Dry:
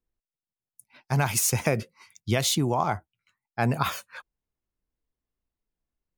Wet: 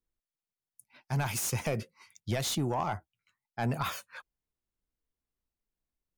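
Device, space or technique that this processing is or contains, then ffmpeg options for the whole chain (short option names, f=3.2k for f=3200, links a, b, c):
saturation between pre-emphasis and de-emphasis: -af "highshelf=f=2.5k:g=7.5,asoftclip=type=tanh:threshold=-18dB,highshelf=f=2.5k:g=-7.5,volume=-4dB"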